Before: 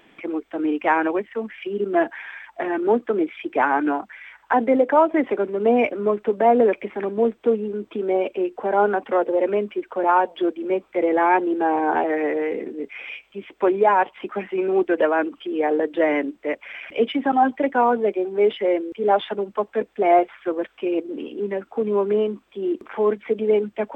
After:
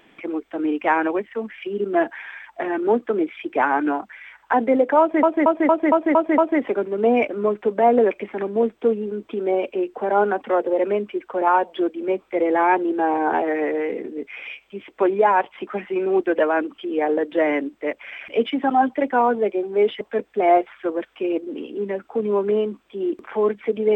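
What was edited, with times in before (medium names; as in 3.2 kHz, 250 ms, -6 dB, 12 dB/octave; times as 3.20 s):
5.00 s: stutter 0.23 s, 7 plays
18.63–19.63 s: delete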